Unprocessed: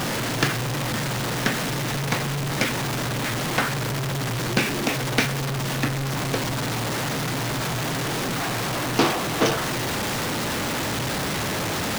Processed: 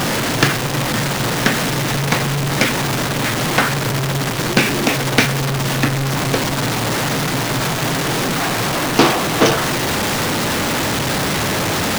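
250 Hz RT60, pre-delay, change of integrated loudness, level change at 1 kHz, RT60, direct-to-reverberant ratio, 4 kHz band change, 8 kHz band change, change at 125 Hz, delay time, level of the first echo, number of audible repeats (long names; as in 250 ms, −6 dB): no reverb audible, no reverb audible, +7.5 dB, +7.5 dB, no reverb audible, no reverb audible, +7.5 dB, +7.5 dB, +6.5 dB, no echo audible, no echo audible, no echo audible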